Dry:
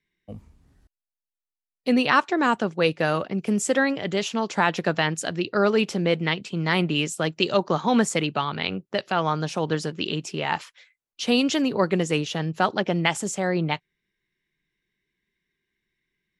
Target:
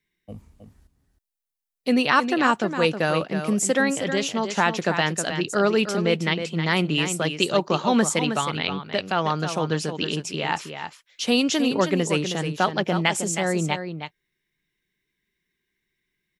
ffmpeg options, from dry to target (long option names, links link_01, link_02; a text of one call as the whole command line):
ffmpeg -i in.wav -filter_complex "[0:a]highshelf=frequency=7200:gain=8,asplit=2[link_01][link_02];[link_02]aecho=0:1:316:0.376[link_03];[link_01][link_03]amix=inputs=2:normalize=0" out.wav